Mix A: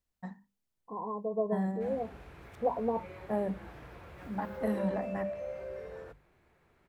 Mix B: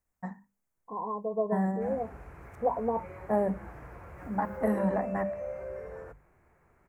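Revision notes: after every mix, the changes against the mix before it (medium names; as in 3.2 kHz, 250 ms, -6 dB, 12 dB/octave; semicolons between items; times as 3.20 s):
first voice +3.5 dB; background: add bass shelf 130 Hz +5.5 dB; master: add FFT filter 340 Hz 0 dB, 740 Hz +3 dB, 1.1 kHz +4 dB, 2.2 kHz 0 dB, 3.5 kHz -16 dB, 6.7 kHz 0 dB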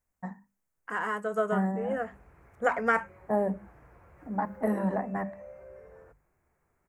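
second voice: remove Chebyshev low-pass 1.1 kHz, order 10; background -9.5 dB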